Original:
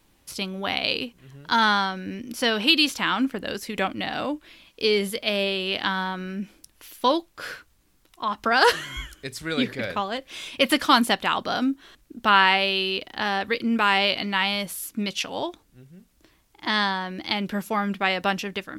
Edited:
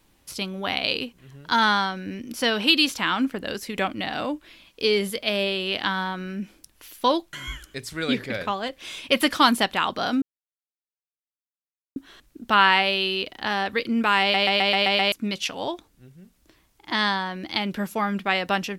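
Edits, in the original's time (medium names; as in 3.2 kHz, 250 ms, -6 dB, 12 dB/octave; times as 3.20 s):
7.33–8.82 s: delete
11.71 s: insert silence 1.74 s
13.96 s: stutter in place 0.13 s, 7 plays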